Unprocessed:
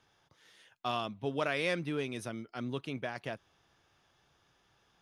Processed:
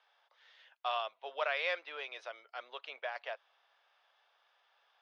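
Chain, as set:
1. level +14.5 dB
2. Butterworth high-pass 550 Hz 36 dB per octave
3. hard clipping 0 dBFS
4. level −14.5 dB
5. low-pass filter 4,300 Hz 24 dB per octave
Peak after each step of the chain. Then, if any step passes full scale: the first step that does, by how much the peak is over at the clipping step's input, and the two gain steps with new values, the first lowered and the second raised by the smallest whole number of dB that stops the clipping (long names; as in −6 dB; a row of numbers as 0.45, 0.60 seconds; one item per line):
−5.0, −5.5, −5.5, −20.0, −20.0 dBFS
no step passes full scale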